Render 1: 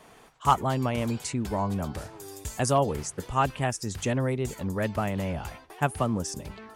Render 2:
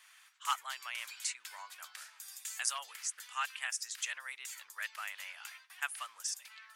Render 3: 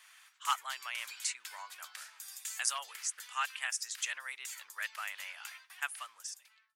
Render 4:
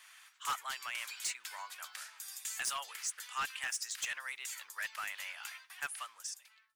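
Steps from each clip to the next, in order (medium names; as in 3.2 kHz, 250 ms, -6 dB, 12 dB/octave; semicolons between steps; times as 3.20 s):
high-pass 1.5 kHz 24 dB/octave; trim -1.5 dB
fade out at the end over 1.08 s; peaking EQ 260 Hz +2.5 dB 2 oct; trim +1.5 dB
block-companded coder 7-bit; saturation -31.5 dBFS, distortion -9 dB; trim +1.5 dB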